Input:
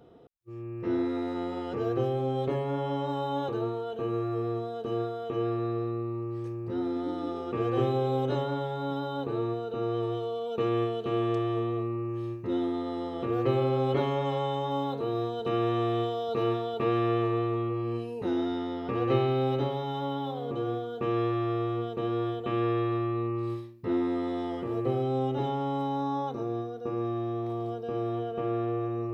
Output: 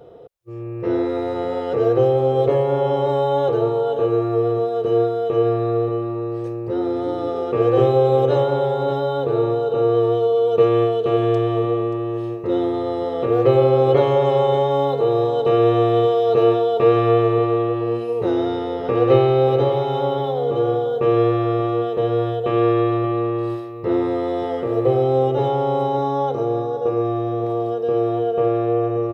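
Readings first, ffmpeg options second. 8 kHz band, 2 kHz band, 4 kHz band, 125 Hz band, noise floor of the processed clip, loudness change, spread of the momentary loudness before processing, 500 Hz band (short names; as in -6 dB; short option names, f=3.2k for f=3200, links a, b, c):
n/a, +7.5 dB, +7.0 dB, +8.5 dB, -27 dBFS, +11.0 dB, 6 LU, +13.5 dB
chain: -af "equalizer=f=125:t=o:w=1:g=3,equalizer=f=250:t=o:w=1:g=-8,equalizer=f=500:t=o:w=1:g=11,aecho=1:1:580:0.266,volume=6.5dB"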